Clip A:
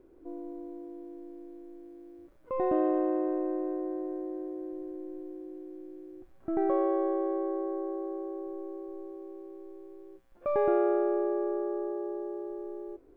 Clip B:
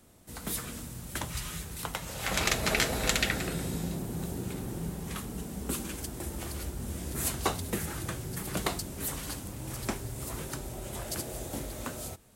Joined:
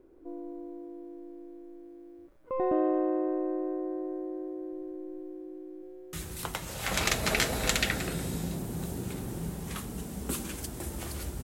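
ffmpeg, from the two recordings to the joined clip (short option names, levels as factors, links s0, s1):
-filter_complex "[0:a]apad=whole_dur=11.43,atrim=end=11.43,atrim=end=6.132[s0];[1:a]atrim=start=1.528:end=6.83[s1];[s0][s1]acrossfade=d=0.004:c1=hsin:c2=hsin,asplit=2[s2][s3];[s3]afade=t=in:st=5.39:d=0.01,afade=t=out:st=6.13:d=0.01,aecho=0:1:430|860|1290|1720|2150|2580|3010|3440:0.530884|0.318531|0.191118|0.114671|0.0688026|0.0412816|0.0247689|0.0148614[s4];[s2][s4]amix=inputs=2:normalize=0"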